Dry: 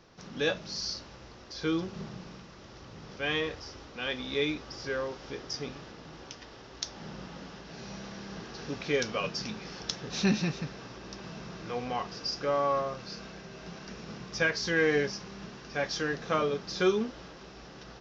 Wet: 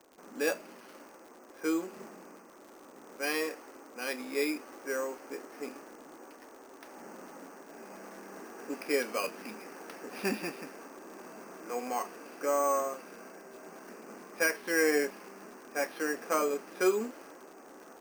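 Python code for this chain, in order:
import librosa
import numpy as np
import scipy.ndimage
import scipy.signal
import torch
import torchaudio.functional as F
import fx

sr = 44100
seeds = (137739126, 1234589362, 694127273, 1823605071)

y = fx.env_lowpass(x, sr, base_hz=1300.0, full_db=-24.0)
y = scipy.signal.sosfilt(scipy.signal.ellip(3, 1.0, 40, [260.0, 2600.0], 'bandpass', fs=sr, output='sos'), y)
y = np.repeat(y[::6], 6)[:len(y)]
y = fx.dmg_crackle(y, sr, seeds[0], per_s=99.0, level_db=-44.0)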